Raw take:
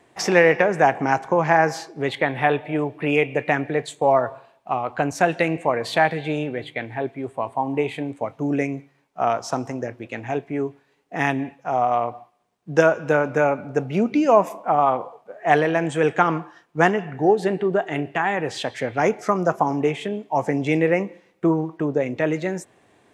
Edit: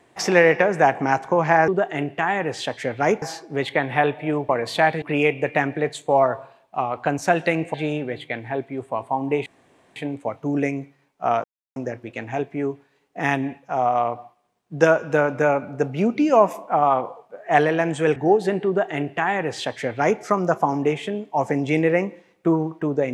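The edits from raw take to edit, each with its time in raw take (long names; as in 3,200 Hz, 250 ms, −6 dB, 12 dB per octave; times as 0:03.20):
0:05.67–0:06.20: move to 0:02.95
0:07.92: splice in room tone 0.50 s
0:09.40–0:09.72: silence
0:16.12–0:17.14: remove
0:17.65–0:19.19: duplicate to 0:01.68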